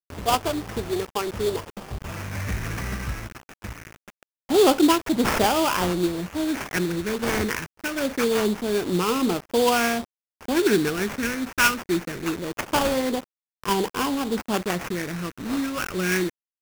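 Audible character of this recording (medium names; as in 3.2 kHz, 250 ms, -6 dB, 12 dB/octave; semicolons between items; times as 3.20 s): a quantiser's noise floor 6-bit, dither none; phasing stages 6, 0.24 Hz, lowest notch 710–2800 Hz; aliases and images of a low sample rate 4 kHz, jitter 20%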